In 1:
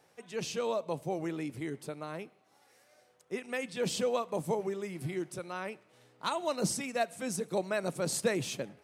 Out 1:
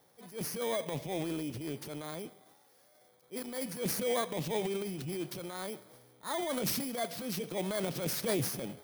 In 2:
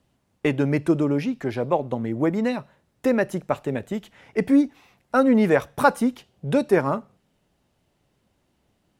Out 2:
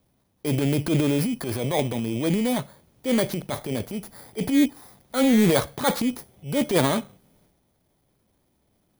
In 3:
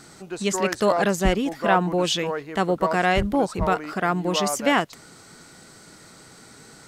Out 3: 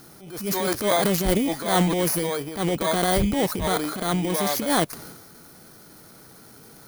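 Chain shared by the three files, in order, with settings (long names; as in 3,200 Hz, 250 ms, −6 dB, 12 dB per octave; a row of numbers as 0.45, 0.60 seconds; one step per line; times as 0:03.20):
samples in bit-reversed order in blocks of 16 samples
transient designer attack −9 dB, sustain +8 dB
highs frequency-modulated by the lows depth 0.23 ms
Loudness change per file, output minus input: −0.5, −1.0, −0.5 LU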